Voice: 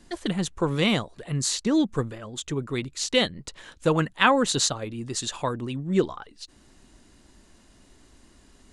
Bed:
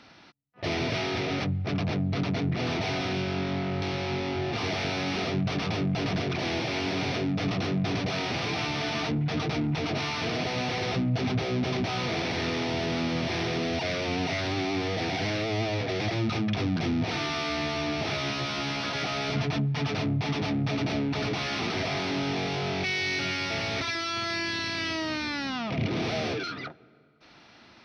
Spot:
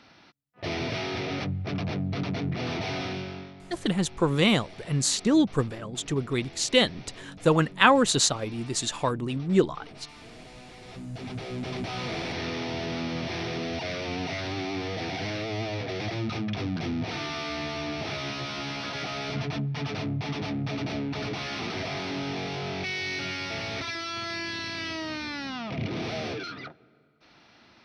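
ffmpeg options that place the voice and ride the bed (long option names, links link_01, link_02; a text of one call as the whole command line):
ffmpeg -i stem1.wav -i stem2.wav -filter_complex "[0:a]adelay=3600,volume=1dB[link_01];[1:a]volume=13dB,afade=type=out:start_time=3.02:duration=0.52:silence=0.158489,afade=type=in:start_time=10.82:duration=1.22:silence=0.177828[link_02];[link_01][link_02]amix=inputs=2:normalize=0" out.wav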